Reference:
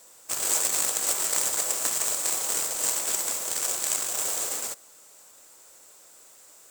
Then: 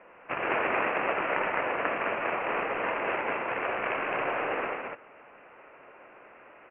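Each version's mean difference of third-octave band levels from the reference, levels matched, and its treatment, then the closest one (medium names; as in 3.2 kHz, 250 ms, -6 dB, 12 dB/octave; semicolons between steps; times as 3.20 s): 17.5 dB: steep low-pass 2.7 kHz 96 dB/octave; bass shelf 87 Hz -8.5 dB; in parallel at 0 dB: gain riding 2 s; on the sum: loudspeakers at several distances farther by 28 m -9 dB, 72 m -3 dB; trim +1 dB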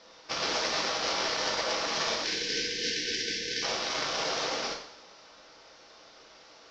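13.5 dB: steep low-pass 5.6 kHz 72 dB/octave; spectral selection erased 2.22–3.63 s, 510–1500 Hz; peak limiter -24 dBFS, peak gain reduction 8.5 dB; two-slope reverb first 0.59 s, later 1.9 s, from -18 dB, DRR -0.5 dB; trim +3.5 dB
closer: second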